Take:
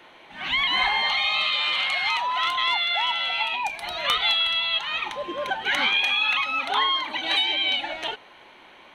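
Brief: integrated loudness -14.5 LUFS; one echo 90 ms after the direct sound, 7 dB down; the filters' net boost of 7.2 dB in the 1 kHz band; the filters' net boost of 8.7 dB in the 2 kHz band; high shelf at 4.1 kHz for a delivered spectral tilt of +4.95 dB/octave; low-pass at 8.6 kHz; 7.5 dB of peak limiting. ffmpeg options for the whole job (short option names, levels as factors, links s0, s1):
-af "lowpass=8600,equalizer=f=1000:t=o:g=6,equalizer=f=2000:t=o:g=8,highshelf=f=4100:g=4.5,alimiter=limit=0.299:level=0:latency=1,aecho=1:1:90:0.447,volume=1.33"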